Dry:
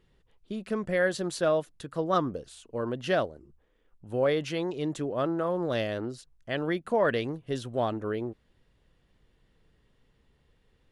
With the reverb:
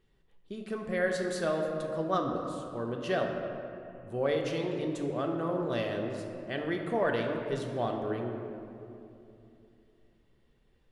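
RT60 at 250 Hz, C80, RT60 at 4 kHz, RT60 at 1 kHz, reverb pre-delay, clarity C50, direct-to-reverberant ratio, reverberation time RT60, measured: 3.5 s, 4.5 dB, 1.5 s, 2.6 s, 3 ms, 4.0 dB, 1.5 dB, 2.8 s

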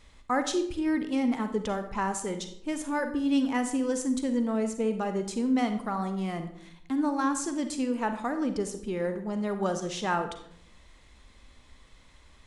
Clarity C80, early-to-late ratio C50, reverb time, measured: 12.5 dB, 9.5 dB, 0.70 s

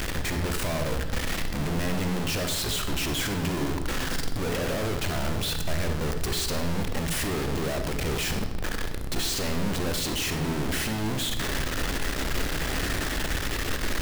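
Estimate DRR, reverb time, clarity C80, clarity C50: 6.0 dB, 1.1 s, 9.5 dB, 7.5 dB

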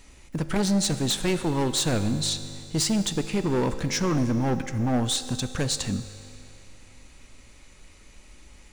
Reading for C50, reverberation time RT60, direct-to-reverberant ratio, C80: 11.5 dB, 2.6 s, 10.0 dB, 12.0 dB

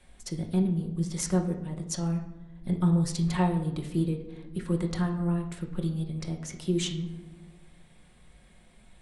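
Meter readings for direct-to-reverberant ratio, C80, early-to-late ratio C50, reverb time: 1.5 dB, 11.5 dB, 8.0 dB, 1.1 s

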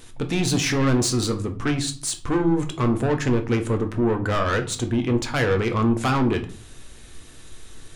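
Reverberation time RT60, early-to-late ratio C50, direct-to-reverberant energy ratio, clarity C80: 0.45 s, 13.5 dB, 5.5 dB, 18.5 dB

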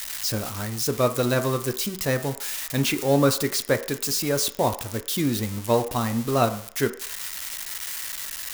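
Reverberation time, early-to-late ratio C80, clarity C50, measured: 0.55 s, 16.5 dB, 13.5 dB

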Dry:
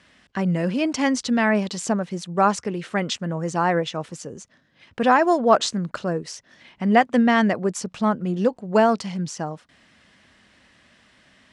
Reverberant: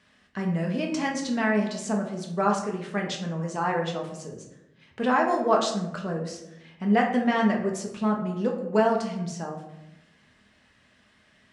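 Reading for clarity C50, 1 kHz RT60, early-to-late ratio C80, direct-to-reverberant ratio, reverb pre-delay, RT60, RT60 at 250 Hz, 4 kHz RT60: 6.5 dB, 0.80 s, 9.5 dB, 0.0 dB, 5 ms, 0.90 s, 1.2 s, 0.50 s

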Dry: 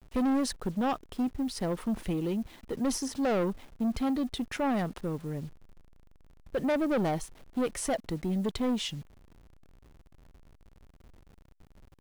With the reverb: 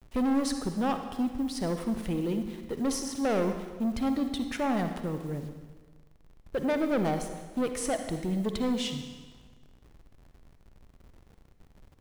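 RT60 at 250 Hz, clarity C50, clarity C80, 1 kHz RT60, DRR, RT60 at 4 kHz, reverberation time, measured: 1.4 s, 7.0 dB, 9.0 dB, 1.4 s, 6.5 dB, 1.3 s, 1.4 s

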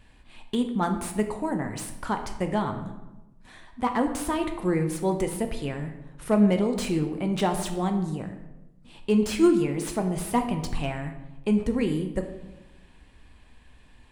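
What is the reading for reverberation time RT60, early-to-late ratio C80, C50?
1.0 s, 11.0 dB, 8.5 dB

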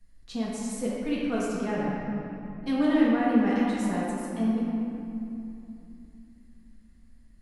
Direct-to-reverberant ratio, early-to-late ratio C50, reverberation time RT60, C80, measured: -7.5 dB, -2.5 dB, 2.9 s, -0.5 dB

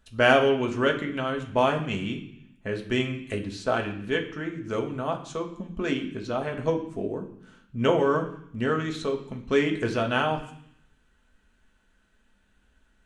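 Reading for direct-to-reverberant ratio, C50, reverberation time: 1.5 dB, 10.0 dB, 0.65 s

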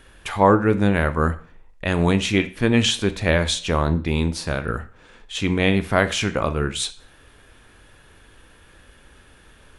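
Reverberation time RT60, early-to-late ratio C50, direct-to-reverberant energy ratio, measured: 0.45 s, 16.0 dB, 11.5 dB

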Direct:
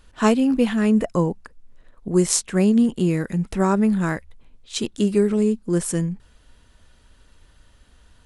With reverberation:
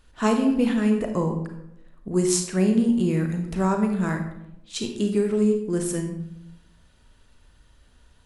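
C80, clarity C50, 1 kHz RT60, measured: 9.5 dB, 6.5 dB, 0.75 s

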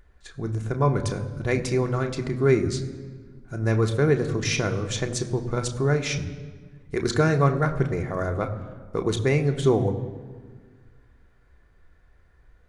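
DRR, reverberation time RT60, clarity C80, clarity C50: 3.5 dB, 1.6 s, 13.0 dB, 12.0 dB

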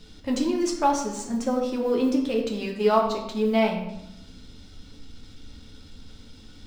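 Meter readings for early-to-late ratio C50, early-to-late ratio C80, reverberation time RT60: 6.0 dB, 8.5 dB, 0.85 s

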